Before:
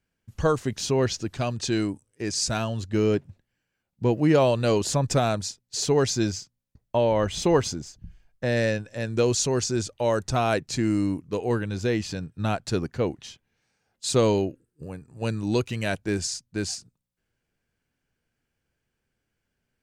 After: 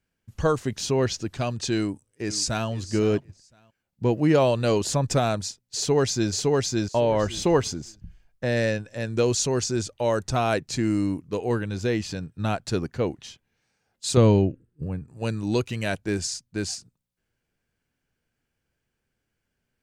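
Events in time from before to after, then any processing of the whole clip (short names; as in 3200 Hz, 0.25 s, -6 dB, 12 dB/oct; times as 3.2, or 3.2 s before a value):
1.78–2.68 echo throw 0.51 s, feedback 15%, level -14.5 dB
5.76–6.32 echo throw 0.56 s, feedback 15%, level -1 dB
14.17–15.08 tone controls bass +10 dB, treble -10 dB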